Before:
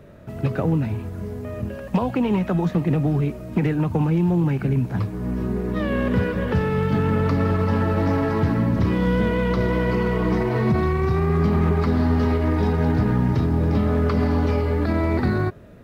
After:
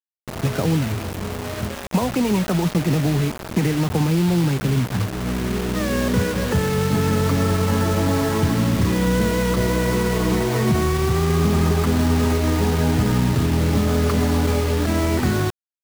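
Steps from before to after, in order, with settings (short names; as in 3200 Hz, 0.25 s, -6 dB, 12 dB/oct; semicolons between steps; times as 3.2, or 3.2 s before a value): bit-crush 5-bit; gain +1 dB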